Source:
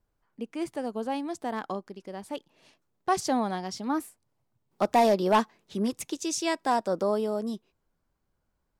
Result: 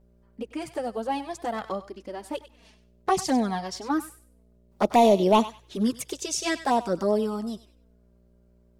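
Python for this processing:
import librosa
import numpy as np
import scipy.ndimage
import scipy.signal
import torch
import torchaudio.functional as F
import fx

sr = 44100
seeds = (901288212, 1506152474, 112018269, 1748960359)

y = fx.dmg_buzz(x, sr, base_hz=60.0, harmonics=11, level_db=-61.0, tilt_db=-6, odd_only=False)
y = fx.env_flanger(y, sr, rest_ms=5.3, full_db=-20.5)
y = fx.echo_thinned(y, sr, ms=97, feedback_pct=24, hz=1200.0, wet_db=-12.0)
y = y * librosa.db_to_amplitude(5.5)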